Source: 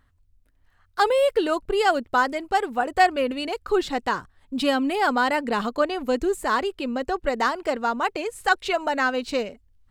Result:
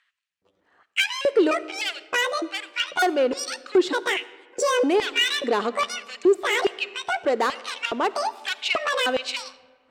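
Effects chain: pitch shift switched off and on +11.5 st, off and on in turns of 302 ms; low-pass 8.8 kHz 24 dB/octave; in parallel at +3 dB: compression, threshold -35 dBFS, peak gain reduction 20 dB; on the sum: saturation -18.5 dBFS, distortion -11 dB; LFO high-pass square 1.2 Hz 360–2500 Hz; on a send at -16.5 dB: reverberation RT60 1.7 s, pre-delay 10 ms; on the sum: tape noise reduction on one side only decoder only

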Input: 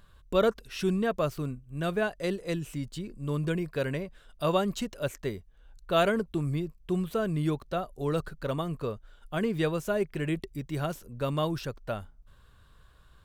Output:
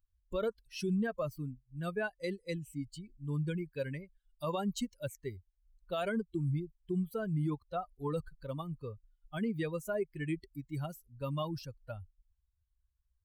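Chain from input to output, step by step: expander on every frequency bin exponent 2; 7.44–8.13 s: dynamic bell 1 kHz, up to +7 dB, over -51 dBFS, Q 1.1; peak limiter -26 dBFS, peak gain reduction 11.5 dB

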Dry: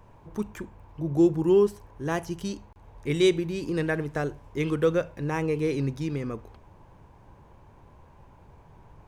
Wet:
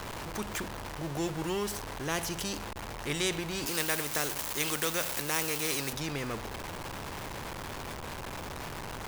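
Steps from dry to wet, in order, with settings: jump at every zero crossing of -39 dBFS; 3.66–5.93 s: RIAA curve recording; spectrum-flattening compressor 2:1

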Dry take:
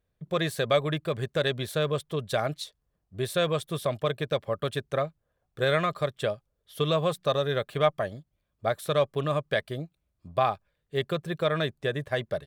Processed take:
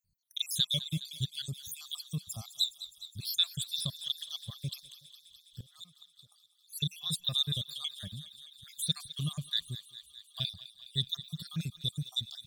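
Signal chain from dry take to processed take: random holes in the spectrogram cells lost 71%; FFT filter 120 Hz 0 dB, 180 Hz +1 dB, 410 Hz -26 dB, 680 Hz -25 dB, 2.3 kHz -16 dB, 3.5 kHz +11 dB; 4.83–6.32 s: inverted gate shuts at -33 dBFS, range -27 dB; thinning echo 207 ms, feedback 78%, high-pass 1 kHz, level -14 dB

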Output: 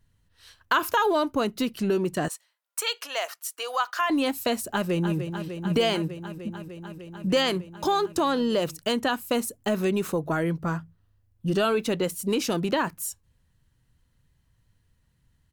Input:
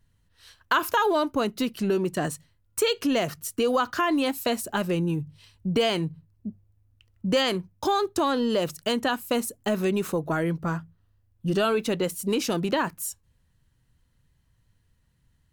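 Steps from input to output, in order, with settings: 2.28–4.10 s: high-pass 670 Hz 24 dB/octave; 4.65–5.18 s: echo throw 300 ms, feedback 85%, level -8.5 dB

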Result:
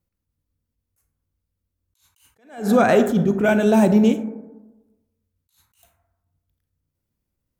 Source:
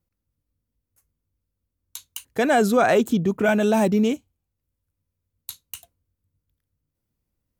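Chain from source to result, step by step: 2.58–4.12 s: bass shelf 390 Hz +5.5 dB; reverberation RT60 1.1 s, pre-delay 28 ms, DRR 9 dB; attacks held to a fixed rise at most 140 dB/s

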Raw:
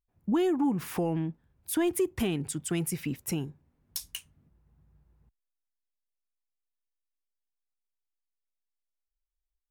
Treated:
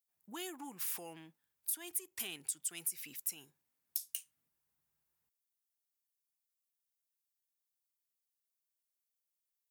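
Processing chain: differentiator; compression 6:1, threshold -39 dBFS, peak gain reduction 11.5 dB; trim +4.5 dB

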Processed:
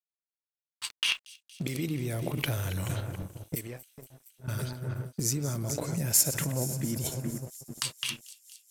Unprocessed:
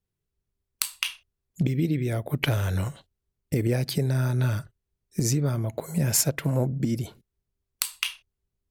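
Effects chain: backward echo that repeats 215 ms, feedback 70%, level -14 dB; 3.55–4.48 s: pre-emphasis filter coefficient 0.9; level-controlled noise filter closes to 350 Hz, open at -24 dBFS; gate -41 dBFS, range -19 dB; treble shelf 5.3 kHz +11 dB; in parallel at +1 dB: compressor with a negative ratio -33 dBFS, ratio -0.5; 0.93–1.86 s: on the sum: overdrive pedal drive 12 dB, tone 6.5 kHz, clips at -6.5 dBFS; crossover distortion -45 dBFS; on a send: feedback echo behind a high-pass 233 ms, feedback 79%, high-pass 5.3 kHz, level -15 dB; on the sum: trim -7.5 dB

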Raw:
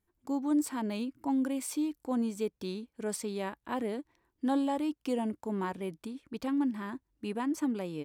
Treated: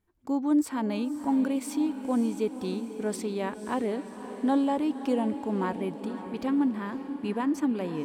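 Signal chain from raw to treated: treble shelf 4.3 kHz -7.5 dB; echo that smears into a reverb 539 ms, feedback 58%, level -11 dB; trim +4.5 dB

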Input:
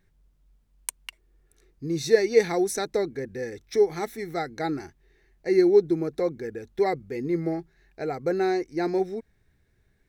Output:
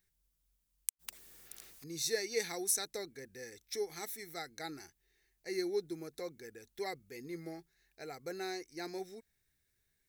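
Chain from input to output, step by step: pre-emphasis filter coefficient 0.9; inverted gate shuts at -17 dBFS, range -38 dB; 0.99–1.84 s: spectrum-flattening compressor 4:1; trim +1.5 dB

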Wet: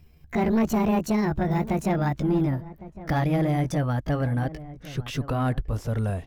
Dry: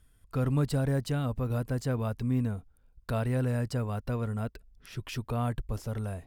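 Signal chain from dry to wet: pitch bend over the whole clip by +8 st ending unshifted; treble shelf 5.3 kHz -7 dB; in parallel at -11 dB: sine folder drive 9 dB, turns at -16.5 dBFS; on the sum: echo from a far wall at 190 m, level -16 dB; trim +2 dB

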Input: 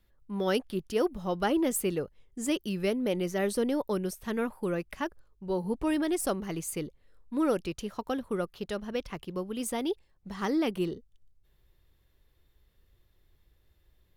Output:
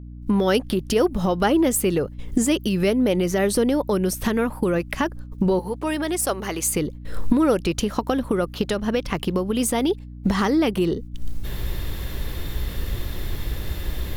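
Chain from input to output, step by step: recorder AGC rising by 68 dB/s; 5.59–6.67 s: Bessel high-pass 480 Hz, order 2; gate -41 dBFS, range -27 dB; hum 60 Hz, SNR 15 dB; trim +8 dB

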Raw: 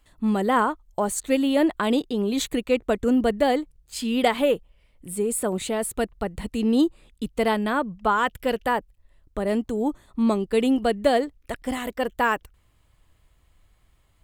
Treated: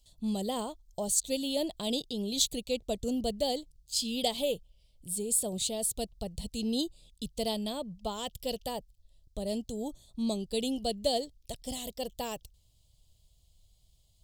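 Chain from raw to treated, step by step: FFT filter 150 Hz 0 dB, 310 Hz -11 dB, 650 Hz -4 dB, 1.5 kHz -27 dB, 2.2 kHz -15 dB, 3.3 kHz +4 dB, 4.8 kHz +10 dB, 10 kHz +4 dB; trim -4 dB

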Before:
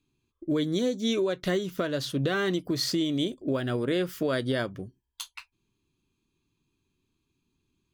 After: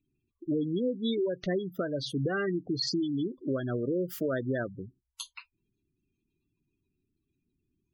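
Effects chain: spectral gate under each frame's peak -15 dB strong; treble shelf 9.1 kHz +8 dB; trim -2.5 dB

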